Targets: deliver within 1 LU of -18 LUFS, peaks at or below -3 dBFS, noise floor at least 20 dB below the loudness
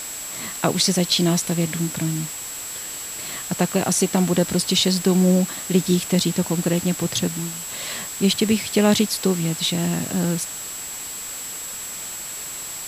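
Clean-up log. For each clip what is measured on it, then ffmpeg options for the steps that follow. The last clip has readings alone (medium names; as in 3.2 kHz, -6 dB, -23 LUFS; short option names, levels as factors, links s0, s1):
steady tone 7.7 kHz; tone level -32 dBFS; noise floor -33 dBFS; noise floor target -42 dBFS; loudness -22.0 LUFS; peak level -2.5 dBFS; loudness target -18.0 LUFS
-> -af "bandreject=f=7700:w=30"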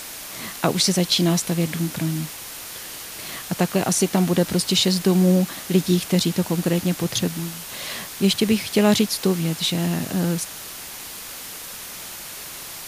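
steady tone not found; noise floor -36 dBFS; noise floor target -42 dBFS
-> -af "afftdn=nr=6:nf=-36"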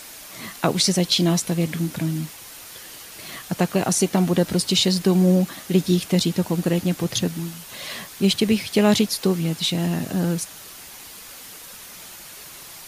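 noise floor -41 dBFS; noise floor target -42 dBFS
-> -af "afftdn=nr=6:nf=-41"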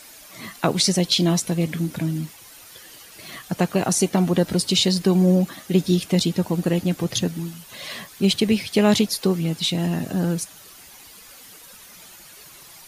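noise floor -45 dBFS; loudness -21.0 LUFS; peak level -3.0 dBFS; loudness target -18.0 LUFS
-> -af "volume=1.41,alimiter=limit=0.708:level=0:latency=1"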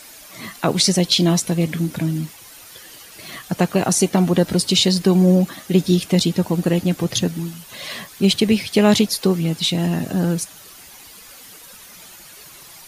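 loudness -18.5 LUFS; peak level -3.0 dBFS; noise floor -42 dBFS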